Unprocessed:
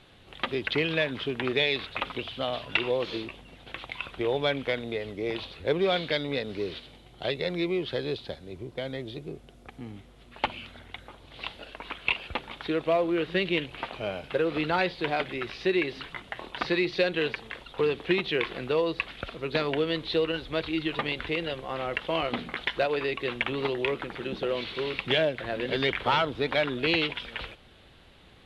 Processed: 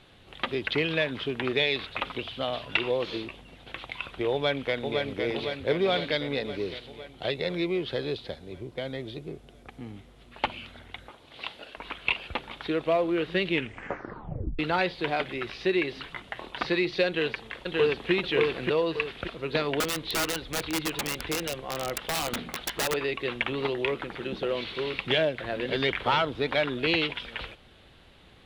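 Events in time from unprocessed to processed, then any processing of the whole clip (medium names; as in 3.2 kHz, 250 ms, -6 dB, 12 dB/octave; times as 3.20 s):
4.32–5.03 s: echo throw 510 ms, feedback 65%, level -4 dB
11.09–11.77 s: high-pass 220 Hz 6 dB/octave
13.50 s: tape stop 1.09 s
17.07–18.11 s: echo throw 580 ms, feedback 40%, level -1.5 dB
19.80–22.94 s: integer overflow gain 22 dB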